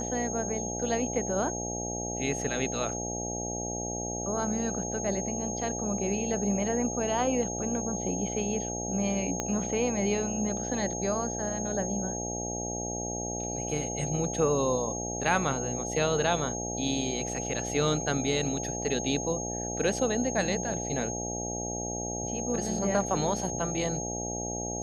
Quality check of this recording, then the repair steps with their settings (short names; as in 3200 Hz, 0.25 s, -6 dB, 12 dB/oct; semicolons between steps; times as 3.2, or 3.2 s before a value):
buzz 60 Hz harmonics 14 -36 dBFS
tone 6500 Hz -35 dBFS
9.4 pop -15 dBFS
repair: de-click; de-hum 60 Hz, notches 14; notch 6500 Hz, Q 30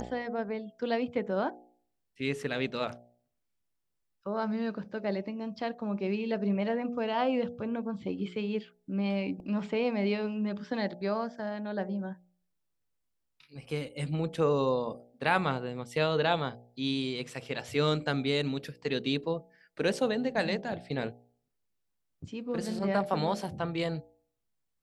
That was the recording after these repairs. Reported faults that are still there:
9.4 pop